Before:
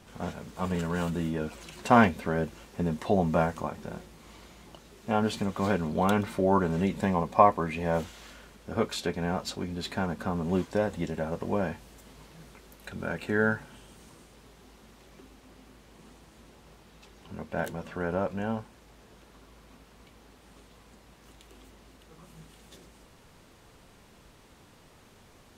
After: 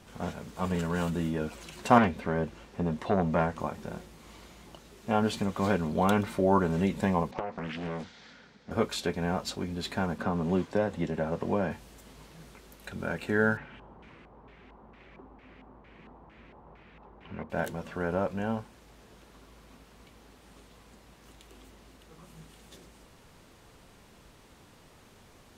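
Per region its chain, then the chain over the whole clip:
0:01.98–0:03.60: high-shelf EQ 7,000 Hz −12 dB + saturating transformer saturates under 960 Hz
0:07.31–0:08.71: downward compressor 12 to 1, threshold −24 dBFS + loudspeaker in its box 140–5,200 Hz, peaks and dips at 350 Hz −10 dB, 620 Hz −8 dB, 1,100 Hz −9 dB, 2,800 Hz −8 dB + highs frequency-modulated by the lows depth 0.88 ms
0:10.18–0:11.71: high-pass filter 78 Hz + high-shelf EQ 6,800 Hz −10.5 dB + multiband upward and downward compressor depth 40%
0:13.57–0:17.50: auto-filter low-pass square 2.2 Hz 950–2,300 Hz + one half of a high-frequency compander decoder only
whole clip: no processing

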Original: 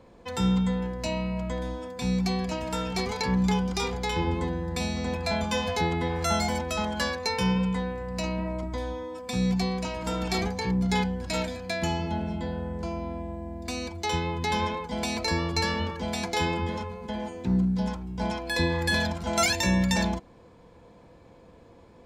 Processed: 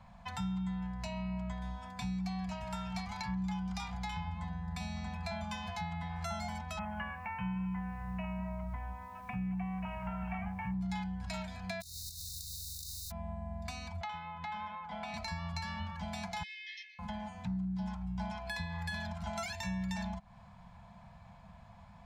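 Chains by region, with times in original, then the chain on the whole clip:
0:06.79–0:10.74: Butterworth low-pass 2,900 Hz 96 dB per octave + bit-depth reduction 10 bits, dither none
0:11.80–0:13.10: compressing power law on the bin magnitudes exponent 0.16 + compressor whose output falls as the input rises −33 dBFS, ratio −0.5 + linear-phase brick-wall band-stop 150–3,600 Hz
0:14.01–0:15.14: three-way crossover with the lows and the highs turned down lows −14 dB, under 250 Hz, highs −18 dB, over 3,300 Hz + upward compression, threshold −31 dBFS + hollow resonant body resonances 420/1,300/3,400 Hz, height 9 dB
0:16.43–0:16.99: linear-phase brick-wall band-pass 1,700–6,300 Hz + saturating transformer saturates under 1,500 Hz
whole clip: downward compressor 6 to 1, threshold −36 dBFS; Chebyshev band-stop filter 200–690 Hz, order 3; high-shelf EQ 3,100 Hz −8.5 dB; level +2 dB

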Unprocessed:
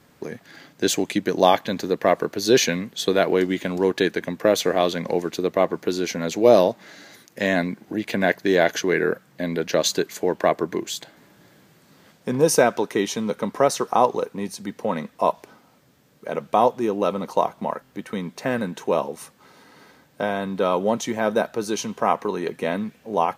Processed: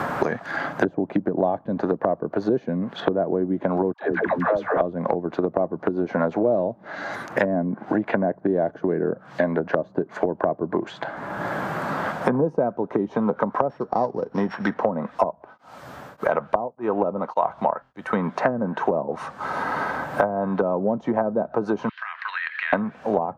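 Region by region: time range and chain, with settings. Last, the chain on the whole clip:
0:03.93–0:04.81: downward compressor 12 to 1, threshold −21 dBFS + all-pass dispersion lows, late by 114 ms, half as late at 490 Hz
0:13.69–0:14.74: samples sorted by size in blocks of 8 samples + flat-topped bell 3,900 Hz +11 dB 2.8 octaves
0:15.29–0:18.14: bass and treble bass −4 dB, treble −7 dB + tremolo along a rectified sine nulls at 1.7 Hz
0:21.89–0:22.73: elliptic band-pass filter 1,700–4,400 Hz, stop band 80 dB + downward compressor, threshold −45 dBFS
whole clip: treble cut that deepens with the level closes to 350 Hz, closed at −19 dBFS; flat-topped bell 970 Hz +10 dB; multiband upward and downward compressor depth 100%

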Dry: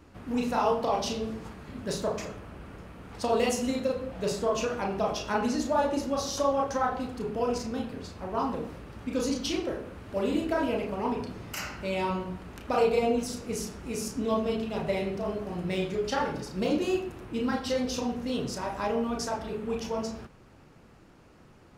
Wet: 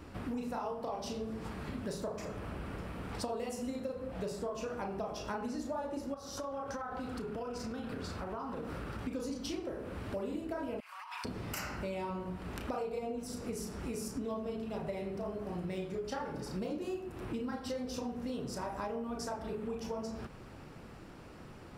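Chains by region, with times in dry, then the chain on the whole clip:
0:06.14–0:08.99: parametric band 1,400 Hz +7 dB 0.38 octaves + downward compressor 4 to 1, threshold −38 dBFS
0:10.80–0:11.25: Butterworth high-pass 1,100 Hz + compressor whose output falls as the input rises −48 dBFS + comb filter 5.5 ms, depth 34%
whole clip: notch filter 6,500 Hz, Q 12; dynamic equaliser 3,200 Hz, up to −6 dB, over −50 dBFS, Q 0.89; downward compressor 6 to 1, threshold −41 dBFS; level +4.5 dB

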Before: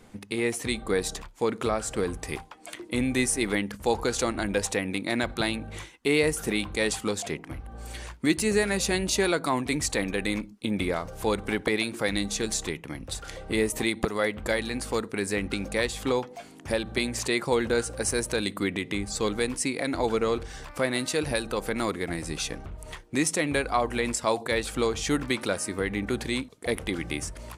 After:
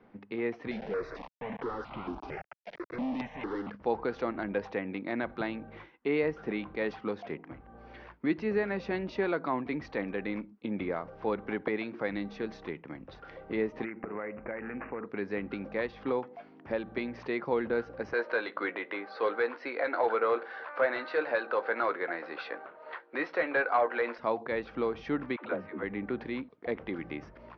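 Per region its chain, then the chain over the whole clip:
0:00.71–0:03.70: log-companded quantiser 2 bits + step-sequenced phaser 4.4 Hz 310–1,700 Hz
0:13.84–0:15.06: hum removal 88.62 Hz, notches 15 + bad sample-rate conversion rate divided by 8×, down none, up filtered + downward compressor, threshold −27 dBFS
0:18.13–0:24.18: loudspeaker in its box 420–5,400 Hz, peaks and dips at 540 Hz +4 dB, 1,500 Hz +7 dB, 4,200 Hz +8 dB + double-tracking delay 17 ms −11.5 dB + mid-hump overdrive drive 14 dB, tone 1,900 Hz, clips at −9.5 dBFS
0:25.36–0:25.83: low-pass filter 3,500 Hz 24 dB per octave + all-pass dispersion lows, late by 107 ms, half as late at 310 Hz
whole clip: Butterworth low-pass 5,700 Hz 72 dB per octave; three-way crossover with the lows and the highs turned down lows −13 dB, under 150 Hz, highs −23 dB, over 2,300 Hz; level −4.5 dB

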